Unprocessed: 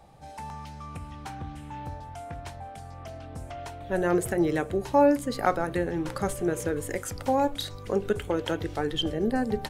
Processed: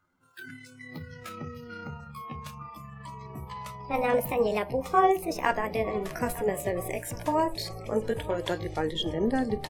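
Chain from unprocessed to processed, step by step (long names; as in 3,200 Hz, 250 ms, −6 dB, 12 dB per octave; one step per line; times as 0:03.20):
pitch glide at a constant tempo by +10 semitones ending unshifted
repeating echo 908 ms, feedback 58%, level −18 dB
noise reduction from a noise print of the clip's start 19 dB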